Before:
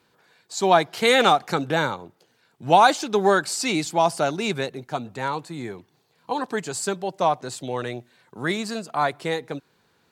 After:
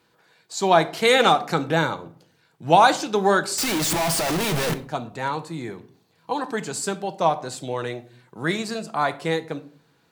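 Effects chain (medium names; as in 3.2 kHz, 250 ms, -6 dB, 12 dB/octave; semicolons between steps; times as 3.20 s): 3.58–4.74 s: one-bit comparator; simulated room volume 500 m³, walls furnished, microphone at 0.65 m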